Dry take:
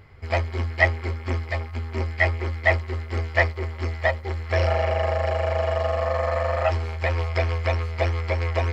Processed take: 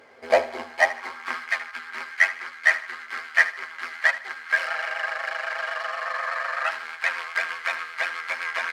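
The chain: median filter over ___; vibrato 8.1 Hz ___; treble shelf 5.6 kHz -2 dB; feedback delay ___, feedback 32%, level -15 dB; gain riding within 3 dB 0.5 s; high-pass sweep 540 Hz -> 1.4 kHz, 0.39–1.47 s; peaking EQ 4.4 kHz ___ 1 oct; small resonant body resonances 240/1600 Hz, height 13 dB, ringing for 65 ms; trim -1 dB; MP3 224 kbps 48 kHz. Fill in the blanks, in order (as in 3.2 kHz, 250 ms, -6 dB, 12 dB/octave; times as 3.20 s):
9 samples, 52 cents, 76 ms, +7 dB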